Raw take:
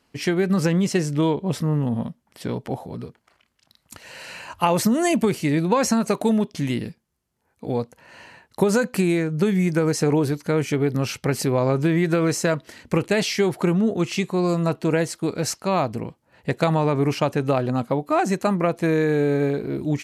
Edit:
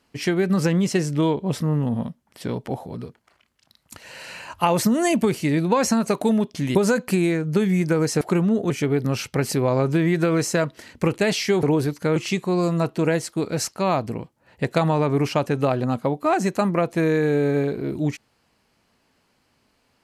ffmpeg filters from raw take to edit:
-filter_complex "[0:a]asplit=6[a][b][c][d][e][f];[a]atrim=end=6.752[g];[b]atrim=start=8.608:end=10.072[h];[c]atrim=start=13.528:end=14.022[i];[d]atrim=start=10.598:end=13.532[j];[e]atrim=start=10.068:end=10.602[k];[f]atrim=start=14.018[l];[g][h]acrossfade=d=0.004:c1=hsin:c2=hsin[m];[m][i]acrossfade=d=0.004:c1=hsin:c2=hsin[n];[n][j]acrossfade=d=0.004:c1=hsin:c2=hsin[o];[o][k]acrossfade=d=0.004:c1=hsin:c2=hsin[p];[p][l]acrossfade=d=0.004:c1=hsin:c2=hsin"

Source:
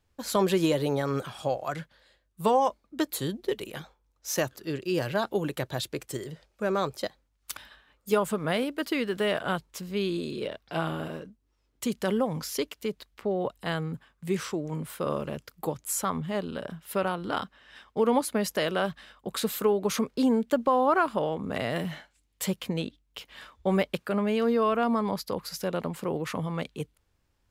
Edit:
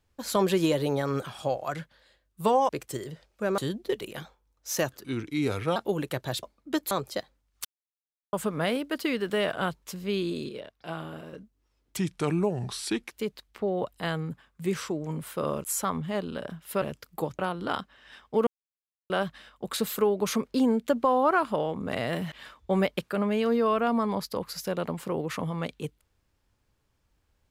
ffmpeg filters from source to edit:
-filter_complex "[0:a]asplit=19[a][b][c][d][e][f][g][h][i][j][k][l][m][n][o][p][q][r][s];[a]atrim=end=2.692[t];[b]atrim=start=5.888:end=6.782[u];[c]atrim=start=3.168:end=4.634[v];[d]atrim=start=4.63:end=5.22,asetpts=PTS-STARTPTS,asetrate=36162,aresample=44100,atrim=end_sample=31730,asetpts=PTS-STARTPTS[w];[e]atrim=start=5.216:end=5.892[x];[f]atrim=start=2.688:end=3.172[y];[g]atrim=start=6.778:end=7.52,asetpts=PTS-STARTPTS,afade=t=out:st=0.738:d=0.004:c=hsin[z];[h]atrim=start=7.52:end=8.2,asetpts=PTS-STARTPTS,volume=0[aa];[i]atrim=start=8.2:end=10.362,asetpts=PTS-STARTPTS,afade=t=in:d=0.004:c=hsin[ab];[j]atrim=start=10.358:end=11.202,asetpts=PTS-STARTPTS,volume=-6.5dB[ac];[k]atrim=start=11.198:end=11.844[ad];[l]atrim=start=11.84:end=12.74,asetpts=PTS-STARTPTS,asetrate=34839,aresample=44100[ae];[m]atrim=start=12.736:end=15.272[af];[n]atrim=start=15.838:end=17.022[ag];[o]atrim=start=15.268:end=15.842[ah];[p]atrim=start=17.018:end=18.1,asetpts=PTS-STARTPTS,afade=t=out:st=1.078:d=0.004:c=hsin[ai];[q]atrim=start=18.1:end=18.73,asetpts=PTS-STARTPTS,volume=0[aj];[r]atrim=start=18.73:end=21.952,asetpts=PTS-STARTPTS,afade=t=in:d=0.004:c=hsin[ak];[s]atrim=start=23.278[al];[t][u]acrossfade=d=0.004:c1=hsin:c2=hsin[am];[am][v]acrossfade=d=0.004:c1=hsin:c2=hsin[an];[an][w]acrossfade=d=0.004:c1=hsin:c2=hsin[ao];[ao][x]acrossfade=d=0.004:c1=hsin:c2=hsin[ap];[ap][y]acrossfade=d=0.004:c1=hsin:c2=hsin[aq];[z][aa][ab]concat=n=3:v=0:a=1[ar];[aq][ar]acrossfade=d=0.004:c1=hsin:c2=hsin[as];[as][ac]acrossfade=d=0.004:c1=hsin:c2=hsin[at];[at][ad]acrossfade=d=0.004:c1=hsin:c2=hsin[au];[au][ae]acrossfade=d=0.004:c1=hsin:c2=hsin[av];[av][af]acrossfade=d=0.004:c1=hsin:c2=hsin[aw];[aw][ag]acrossfade=d=0.004:c1=hsin:c2=hsin[ax];[ax][ah]acrossfade=d=0.004:c1=hsin:c2=hsin[ay];[ai][aj][ak]concat=n=3:v=0:a=1[az];[ay][az]acrossfade=d=0.004:c1=hsin:c2=hsin[ba];[ba][al]acrossfade=d=0.004:c1=hsin:c2=hsin"

